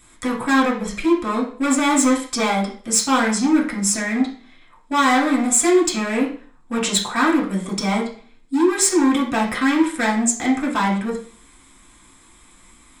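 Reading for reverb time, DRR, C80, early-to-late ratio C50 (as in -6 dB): 0.45 s, -4.5 dB, 12.0 dB, 7.5 dB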